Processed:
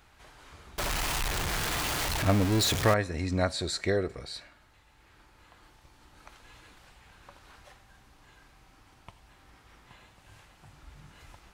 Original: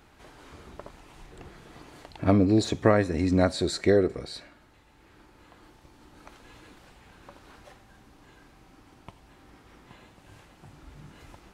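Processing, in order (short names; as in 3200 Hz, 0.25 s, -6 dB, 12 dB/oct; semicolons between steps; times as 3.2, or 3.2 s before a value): 0.78–2.94 zero-crossing step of -23 dBFS; bell 290 Hz -9.5 dB 2.1 oct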